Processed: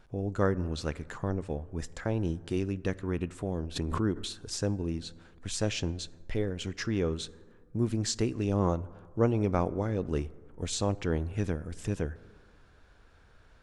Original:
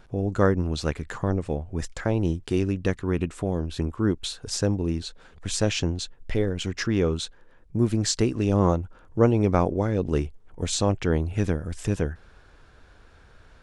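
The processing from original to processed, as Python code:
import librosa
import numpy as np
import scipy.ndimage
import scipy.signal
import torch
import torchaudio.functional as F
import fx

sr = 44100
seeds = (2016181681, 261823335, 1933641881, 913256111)

y = fx.rev_plate(x, sr, seeds[0], rt60_s=1.8, hf_ratio=0.35, predelay_ms=0, drr_db=18.5)
y = fx.pre_swell(y, sr, db_per_s=37.0, at=(3.75, 4.31), fade=0.02)
y = F.gain(torch.from_numpy(y), -6.5).numpy()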